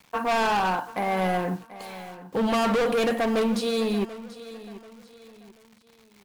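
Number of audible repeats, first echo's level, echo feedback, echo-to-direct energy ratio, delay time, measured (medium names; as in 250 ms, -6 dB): 3, -16.0 dB, 36%, -15.5 dB, 736 ms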